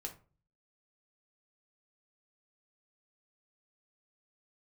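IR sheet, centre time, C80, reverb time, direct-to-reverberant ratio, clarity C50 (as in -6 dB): 11 ms, 18.5 dB, 0.35 s, 2.0 dB, 12.5 dB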